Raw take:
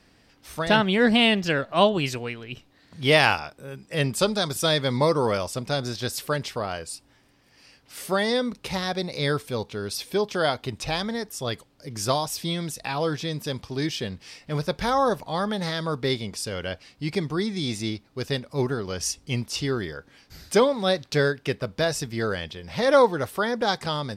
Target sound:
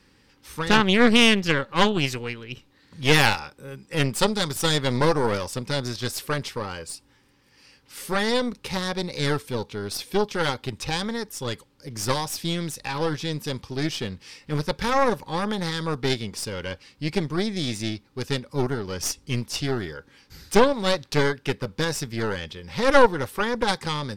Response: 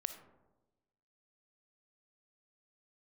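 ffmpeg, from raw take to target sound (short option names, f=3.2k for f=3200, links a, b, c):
-af "asuperstop=centerf=670:order=8:qfactor=3.9,aeval=exprs='0.596*(cos(1*acos(clip(val(0)/0.596,-1,1)))-cos(1*PI/2))+0.168*(cos(4*acos(clip(val(0)/0.596,-1,1)))-cos(4*PI/2))+0.0168*(cos(8*acos(clip(val(0)/0.596,-1,1)))-cos(8*PI/2))':c=same"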